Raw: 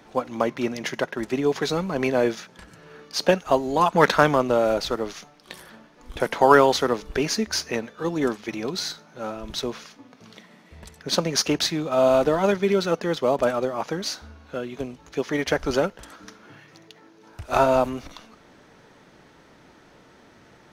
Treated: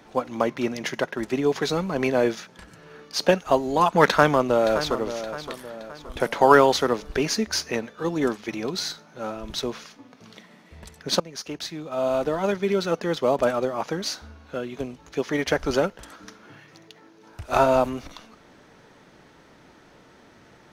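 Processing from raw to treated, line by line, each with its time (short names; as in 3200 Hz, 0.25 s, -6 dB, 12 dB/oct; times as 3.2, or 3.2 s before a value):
4.05–4.96 echo throw 0.57 s, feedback 45%, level -11.5 dB
11.2–13.25 fade in, from -17 dB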